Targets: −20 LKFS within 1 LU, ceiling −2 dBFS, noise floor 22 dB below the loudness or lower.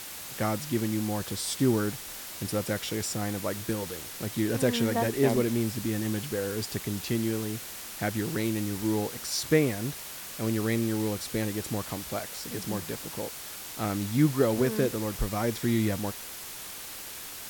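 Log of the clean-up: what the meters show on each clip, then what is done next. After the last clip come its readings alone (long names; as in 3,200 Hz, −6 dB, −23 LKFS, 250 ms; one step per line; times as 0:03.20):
background noise floor −41 dBFS; target noise floor −52 dBFS; integrated loudness −30.0 LKFS; sample peak −11.0 dBFS; target loudness −20.0 LKFS
→ broadband denoise 11 dB, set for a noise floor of −41 dBFS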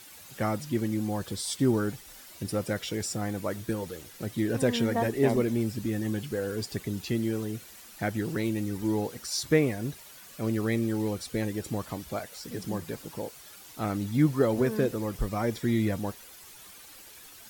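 background noise floor −49 dBFS; target noise floor −52 dBFS
→ broadband denoise 6 dB, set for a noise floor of −49 dBFS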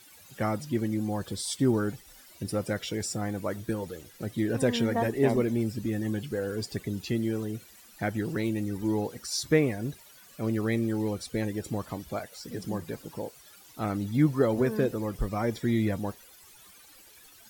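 background noise floor −54 dBFS; integrated loudness −30.0 LKFS; sample peak −11.0 dBFS; target loudness −20.0 LKFS
→ level +10 dB
brickwall limiter −2 dBFS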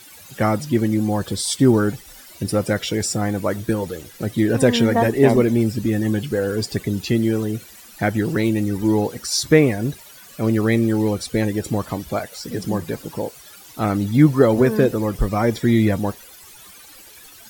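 integrated loudness −20.0 LKFS; sample peak −2.0 dBFS; background noise floor −44 dBFS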